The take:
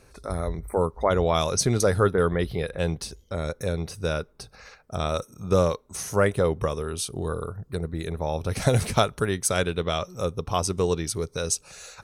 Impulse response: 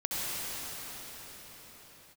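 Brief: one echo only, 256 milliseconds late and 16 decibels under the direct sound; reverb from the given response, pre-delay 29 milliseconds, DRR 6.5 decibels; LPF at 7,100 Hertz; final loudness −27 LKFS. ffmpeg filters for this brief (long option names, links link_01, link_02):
-filter_complex "[0:a]lowpass=7100,aecho=1:1:256:0.158,asplit=2[link_01][link_02];[1:a]atrim=start_sample=2205,adelay=29[link_03];[link_02][link_03]afir=irnorm=-1:irlink=0,volume=-15.5dB[link_04];[link_01][link_04]amix=inputs=2:normalize=0,volume=-1.5dB"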